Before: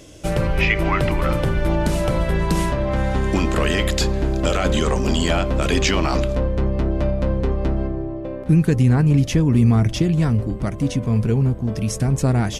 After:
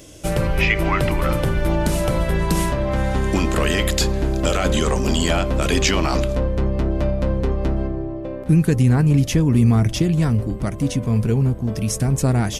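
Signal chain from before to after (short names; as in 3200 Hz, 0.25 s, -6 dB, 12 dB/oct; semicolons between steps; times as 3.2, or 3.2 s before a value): high shelf 9500 Hz +10.5 dB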